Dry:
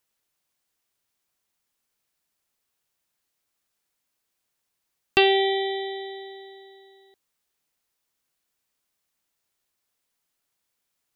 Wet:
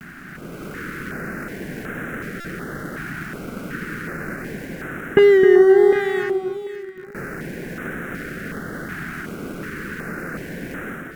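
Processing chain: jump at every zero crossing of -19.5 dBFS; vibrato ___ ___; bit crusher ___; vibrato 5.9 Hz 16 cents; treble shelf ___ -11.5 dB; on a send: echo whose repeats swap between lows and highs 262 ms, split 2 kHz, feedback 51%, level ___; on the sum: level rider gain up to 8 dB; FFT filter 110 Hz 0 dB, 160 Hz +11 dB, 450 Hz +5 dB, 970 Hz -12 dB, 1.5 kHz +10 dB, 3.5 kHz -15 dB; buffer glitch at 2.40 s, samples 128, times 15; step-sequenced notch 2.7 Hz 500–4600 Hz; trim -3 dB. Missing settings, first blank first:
1.4 Hz, 93 cents, 4-bit, 3 kHz, -5 dB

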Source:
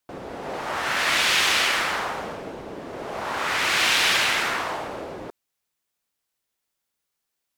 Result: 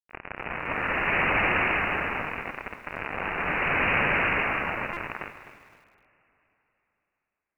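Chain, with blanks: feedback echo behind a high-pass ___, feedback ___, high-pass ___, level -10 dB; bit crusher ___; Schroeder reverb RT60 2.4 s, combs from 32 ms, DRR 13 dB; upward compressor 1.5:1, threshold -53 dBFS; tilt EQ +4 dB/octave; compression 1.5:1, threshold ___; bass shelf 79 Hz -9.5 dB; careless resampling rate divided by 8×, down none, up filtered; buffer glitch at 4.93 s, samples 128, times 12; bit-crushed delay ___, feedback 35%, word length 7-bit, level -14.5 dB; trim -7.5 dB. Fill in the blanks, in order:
182 ms, 52%, 2.9 kHz, 5-bit, -19 dBFS, 256 ms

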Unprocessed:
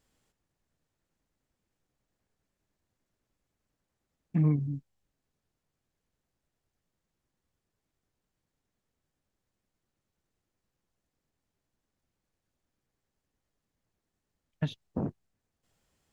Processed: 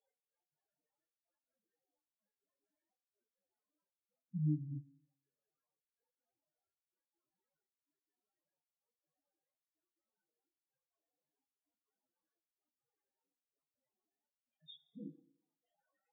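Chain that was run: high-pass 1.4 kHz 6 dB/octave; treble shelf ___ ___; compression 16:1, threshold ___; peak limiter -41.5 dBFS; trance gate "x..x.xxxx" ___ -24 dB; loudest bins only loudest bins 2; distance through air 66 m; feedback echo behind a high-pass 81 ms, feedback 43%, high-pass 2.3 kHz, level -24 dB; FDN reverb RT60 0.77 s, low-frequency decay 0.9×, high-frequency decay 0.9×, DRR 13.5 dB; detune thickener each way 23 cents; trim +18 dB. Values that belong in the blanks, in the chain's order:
2.1 kHz, -8.5 dB, -46 dBFS, 143 bpm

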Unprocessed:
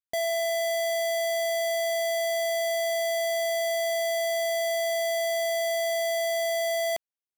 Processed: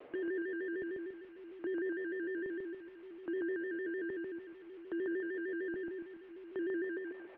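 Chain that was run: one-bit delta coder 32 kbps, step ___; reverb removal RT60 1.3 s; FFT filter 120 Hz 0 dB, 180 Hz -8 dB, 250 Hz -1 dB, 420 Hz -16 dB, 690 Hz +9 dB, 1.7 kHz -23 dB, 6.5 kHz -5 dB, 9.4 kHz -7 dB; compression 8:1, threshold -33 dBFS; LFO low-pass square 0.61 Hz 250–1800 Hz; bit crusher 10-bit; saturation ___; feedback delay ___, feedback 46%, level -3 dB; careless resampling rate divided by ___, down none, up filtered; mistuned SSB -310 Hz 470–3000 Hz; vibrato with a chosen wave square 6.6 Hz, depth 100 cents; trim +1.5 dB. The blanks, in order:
-41.5 dBFS, -36.5 dBFS, 142 ms, 3×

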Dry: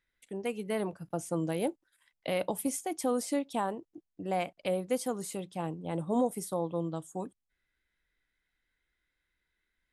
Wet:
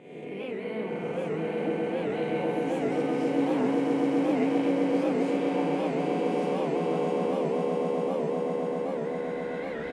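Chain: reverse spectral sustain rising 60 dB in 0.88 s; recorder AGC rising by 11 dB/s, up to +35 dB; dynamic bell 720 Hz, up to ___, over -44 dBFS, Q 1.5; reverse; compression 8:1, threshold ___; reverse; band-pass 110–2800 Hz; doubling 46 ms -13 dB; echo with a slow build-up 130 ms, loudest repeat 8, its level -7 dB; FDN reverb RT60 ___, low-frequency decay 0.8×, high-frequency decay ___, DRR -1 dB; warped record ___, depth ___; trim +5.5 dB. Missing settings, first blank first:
-4 dB, -40 dBFS, 3.7 s, 0.35×, 78 rpm, 160 cents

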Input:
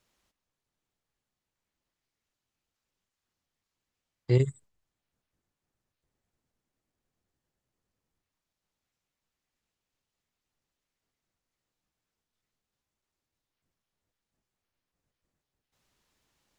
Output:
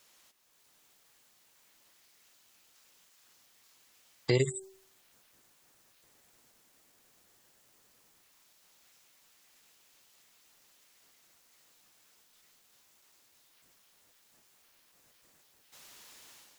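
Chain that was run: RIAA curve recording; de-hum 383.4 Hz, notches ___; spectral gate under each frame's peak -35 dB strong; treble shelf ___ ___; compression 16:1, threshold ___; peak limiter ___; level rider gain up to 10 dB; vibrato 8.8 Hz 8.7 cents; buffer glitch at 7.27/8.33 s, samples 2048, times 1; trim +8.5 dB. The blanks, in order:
2, 5.5 kHz, -8.5 dB, -39 dBFS, -33 dBFS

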